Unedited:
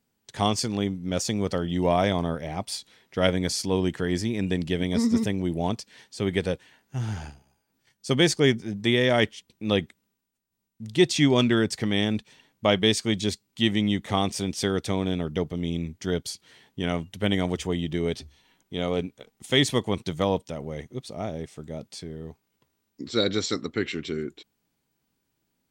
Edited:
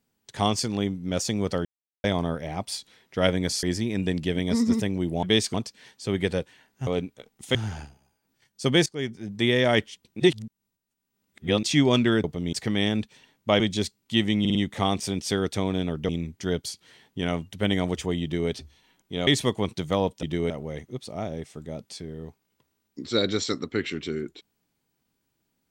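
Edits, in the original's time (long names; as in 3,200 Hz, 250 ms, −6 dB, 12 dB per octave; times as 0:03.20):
0:01.65–0:02.04: silence
0:03.63–0:04.07: remove
0:08.31–0:08.95: fade in linear, from −20.5 dB
0:09.65–0:11.08: reverse
0:12.76–0:13.07: move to 0:05.67
0:13.87: stutter 0.05 s, 4 plays
0:15.41–0:15.70: move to 0:11.69
0:17.84–0:18.11: duplicate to 0:20.52
0:18.88–0:19.56: move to 0:07.00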